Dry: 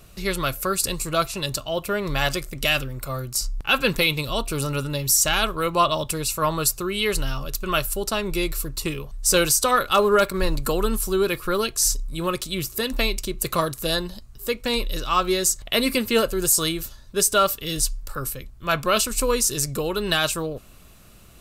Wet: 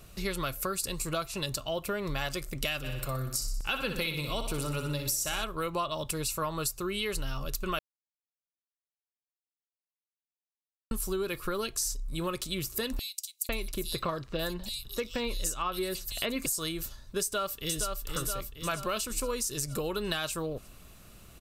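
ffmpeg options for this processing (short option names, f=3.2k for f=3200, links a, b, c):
-filter_complex "[0:a]asplit=3[a][b][c];[a]afade=t=out:st=2.83:d=0.02[d];[b]aecho=1:1:61|122|183|244|305|366|427:0.376|0.21|0.118|0.066|0.037|0.0207|0.0116,afade=t=in:st=2.83:d=0.02,afade=t=out:st=5.43:d=0.02[e];[c]afade=t=in:st=5.43:d=0.02[f];[d][e][f]amix=inputs=3:normalize=0,asettb=1/sr,asplit=3[g][h][i];[g]atrim=end=12.994[j];[h]atrim=start=12.99:end=16.46,asetpts=PTS-STARTPTS,afade=t=in:d=0.004:c=qsin,afade=t=out:st=3.466:d=0.004:c=qsin,acrossover=split=4000[k][l];[k]adelay=500[m];[m][l]amix=inputs=2:normalize=0,atrim=end_sample=153027[n];[i]atrim=start=16.456[o];[j][n]acrossfade=d=0.004:c1=hsin:c2=qsin[p];[p][o]acrossfade=d=0.004:c1=qsin:c2=hsin,asplit=2[q][r];[r]afade=t=in:st=17.22:d=0.01,afade=t=out:st=18.03:d=0.01,aecho=0:1:470|940|1410|1880|2350|2820:0.473151|0.236576|0.118288|0.0591439|0.029572|0.014786[s];[q][s]amix=inputs=2:normalize=0,asplit=3[t][u][v];[t]atrim=end=7.79,asetpts=PTS-STARTPTS,afade=t=out:st=7.786:d=0.004:c=hsin[w];[u]atrim=start=7.79:end=10.91,asetpts=PTS-STARTPTS,volume=0[x];[v]atrim=start=10.91,asetpts=PTS-STARTPTS,afade=t=in:d=0.004:c=hsin[y];[w][x][y]concat=n=3:v=0:a=1,acompressor=threshold=-26dB:ratio=6,volume=-3dB"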